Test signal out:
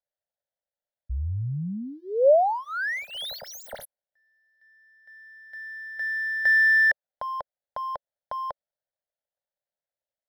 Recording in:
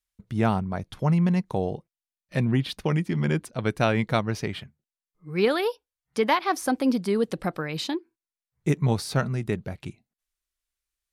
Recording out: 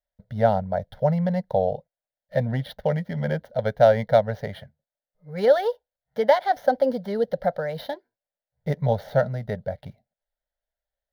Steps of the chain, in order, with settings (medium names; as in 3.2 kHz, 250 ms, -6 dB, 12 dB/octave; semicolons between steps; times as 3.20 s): median filter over 9 samples; peaking EQ 570 Hz +14.5 dB 0.7 oct; static phaser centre 1.7 kHz, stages 8